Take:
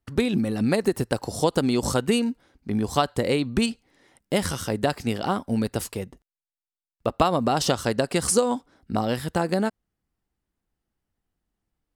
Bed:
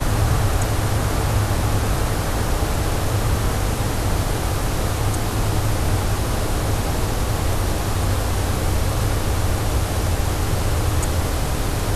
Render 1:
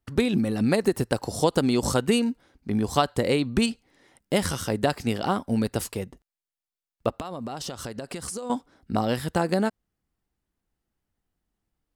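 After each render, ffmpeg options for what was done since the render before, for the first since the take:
-filter_complex "[0:a]asettb=1/sr,asplit=3[a][b][c];[a]atrim=end=7.094[d];[b]atrim=start=7.09:end=8.5,asetpts=PTS-STARTPTS,afade=t=in:d=0.004:c=qsin,afade=t=out:st=1.406:d=0.004:c=qsin,acompressor=threshold=-31dB:ratio=6:attack=3.2:release=140:knee=1:detection=peak[e];[c]atrim=start=8.496[f];[d][e]acrossfade=d=0.004:c1=hsin:c2=qsin[g];[g][f]acrossfade=d=0.004:c1=qsin:c2=hsin"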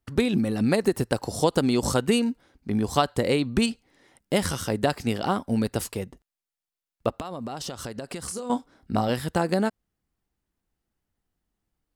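-filter_complex "[0:a]asettb=1/sr,asplit=3[a][b][c];[a]atrim=end=8.264[d];[b]atrim=start=8.26:end=9.1,asetpts=PTS-STARTPTS,afade=t=in:d=0.004:c=qsin,afade=t=out:st=0.836:d=0.004:c=qsin,asplit=2[e][f];[f]adelay=29,volume=-9.5dB[g];[e][g]amix=inputs=2:normalize=0,atrim=end_sample=37044[h];[c]atrim=start=9.096[i];[d][h]acrossfade=d=0.004:c1=hsin:c2=qsin[j];[j][i]acrossfade=d=0.004:c1=qsin:c2=hsin"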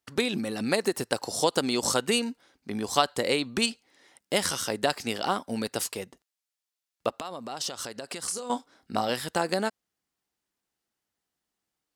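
-af "highpass=f=490:p=1,equalizer=f=5.5k:w=0.64:g=4.5"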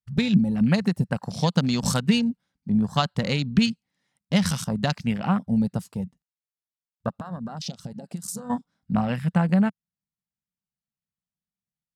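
-af "afwtdn=0.0178,lowshelf=f=250:t=q:w=3:g=11.5"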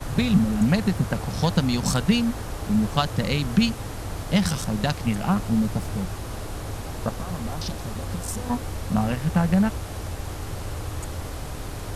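-filter_complex "[1:a]volume=-11.5dB[a];[0:a][a]amix=inputs=2:normalize=0"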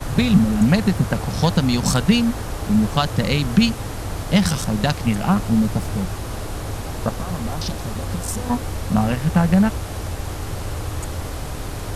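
-af "volume=4.5dB,alimiter=limit=-3dB:level=0:latency=1"

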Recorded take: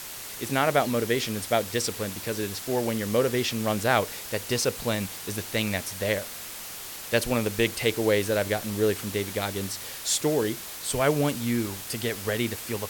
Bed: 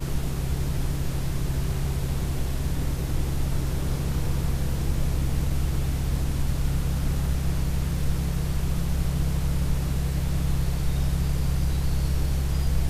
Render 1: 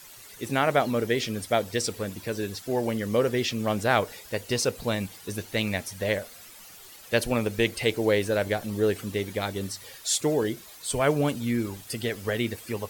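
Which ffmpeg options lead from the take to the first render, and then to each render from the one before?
-af "afftdn=nr=12:nf=-39"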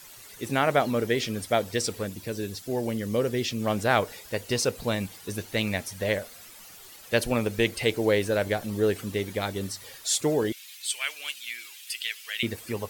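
-filter_complex "[0:a]asettb=1/sr,asplit=3[a][b][c];[a]atrim=end=2.074[d];[b]atrim=start=2.07:end=3.62,asetpts=PTS-STARTPTS,afade=t=in:d=0.004:c=qsin,afade=t=out:st=1.546:d=0.004:c=qsin,equalizer=f=1.2k:w=0.53:g=-5.5[e];[c]atrim=start=3.616[f];[d][e]acrossfade=d=0.004:c1=hsin:c2=qsin[g];[g][f]acrossfade=d=0.004:c1=qsin:c2=hsin,asettb=1/sr,asplit=3[h][i][j];[h]atrim=end=10.524[k];[i]atrim=start=10.52:end=12.43,asetpts=PTS-STARTPTS,afade=t=in:d=0.004:c=qsin,afade=t=out:st=1.906:d=0.004:c=qsin,highpass=f=2.6k:t=q:w=2.3[l];[j]atrim=start=12.426[m];[k][l]acrossfade=d=0.004:c1=hsin:c2=qsin[n];[n][m]acrossfade=d=0.004:c1=qsin:c2=hsin"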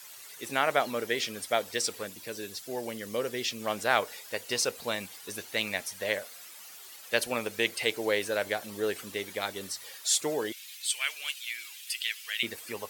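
-af "highpass=f=780:p=1"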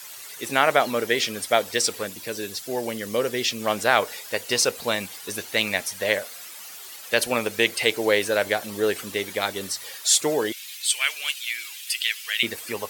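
-af "volume=7.5dB,alimiter=limit=-3dB:level=0:latency=1"

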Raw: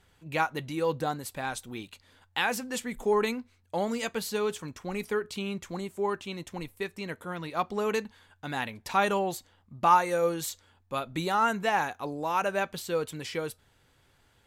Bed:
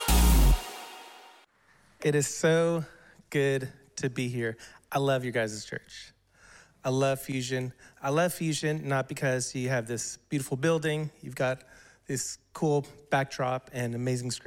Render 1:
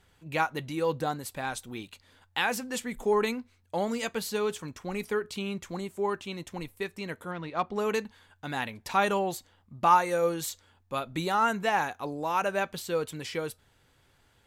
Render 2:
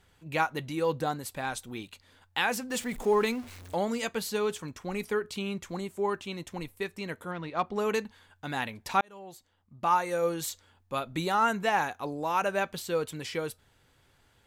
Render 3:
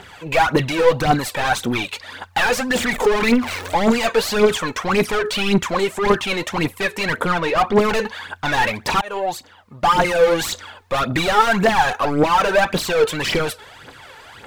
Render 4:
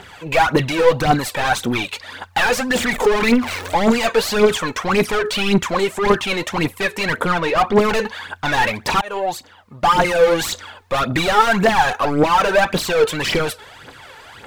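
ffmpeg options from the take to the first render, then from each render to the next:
-filter_complex "[0:a]asettb=1/sr,asplit=3[a][b][c];[a]atrim=end=7.314[d];[b]atrim=start=7.31:end=7.76,asetpts=PTS-STARTPTS,afade=t=in:d=0.004:c=qsin,afade=t=out:st=0.446:d=0.004:c=qsin,adynamicsmooth=sensitivity=2.5:basefreq=3.6k[e];[c]atrim=start=7.756[f];[d][e]acrossfade=d=0.004:c1=hsin:c2=qsin[g];[g][f]acrossfade=d=0.004:c1=qsin:c2=hsin"
-filter_complex "[0:a]asettb=1/sr,asplit=3[a][b][c];[a]atrim=end=2.704[d];[b]atrim=start=2.7:end=3.75,asetpts=PTS-STARTPTS,afade=t=in:d=0.004:c=qsin,afade=t=out:st=1.046:d=0.004:c=qsin,aeval=exprs='val(0)+0.5*0.00841*sgn(val(0))':c=same[e];[c]atrim=start=3.746[f];[d][e]acrossfade=d=0.004:c1=hsin:c2=qsin[g];[g][f]acrossfade=d=0.004:c1=qsin:c2=hsin,asplit=2[h][i];[h]atrim=end=9.01,asetpts=PTS-STARTPTS,afade=t=out:st=9.006:d=0.004:c=hsin[j];[i]atrim=start=9.01,asetpts=PTS-STARTPTS,afade=t=in:d=1.48[k];[j][k]concat=n=2:v=0:a=1"
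-filter_complex "[0:a]asplit=2[a][b];[b]highpass=f=720:p=1,volume=34dB,asoftclip=type=tanh:threshold=-11dB[c];[a][c]amix=inputs=2:normalize=0,lowpass=f=2.2k:p=1,volume=-6dB,aphaser=in_gain=1:out_gain=1:delay=2.4:decay=0.63:speed=1.8:type=triangular"
-af "volume=1dB"

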